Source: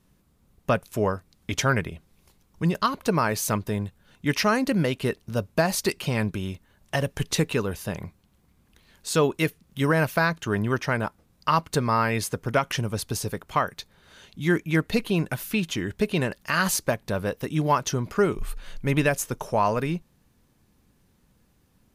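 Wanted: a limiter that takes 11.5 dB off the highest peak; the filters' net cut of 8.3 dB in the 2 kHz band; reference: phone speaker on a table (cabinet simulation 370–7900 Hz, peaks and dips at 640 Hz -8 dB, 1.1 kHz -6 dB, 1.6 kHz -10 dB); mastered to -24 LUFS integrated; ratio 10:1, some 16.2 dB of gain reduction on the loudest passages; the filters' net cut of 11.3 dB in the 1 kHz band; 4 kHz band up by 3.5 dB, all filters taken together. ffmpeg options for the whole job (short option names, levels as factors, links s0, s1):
-af "equalizer=f=1000:t=o:g=-7,equalizer=f=2000:t=o:g=-4.5,equalizer=f=4000:t=o:g=6.5,acompressor=threshold=0.0178:ratio=10,alimiter=level_in=1.78:limit=0.0631:level=0:latency=1,volume=0.562,highpass=f=370:w=0.5412,highpass=f=370:w=1.3066,equalizer=f=640:t=q:w=4:g=-8,equalizer=f=1100:t=q:w=4:g=-6,equalizer=f=1600:t=q:w=4:g=-10,lowpass=f=7900:w=0.5412,lowpass=f=7900:w=1.3066,volume=12.6"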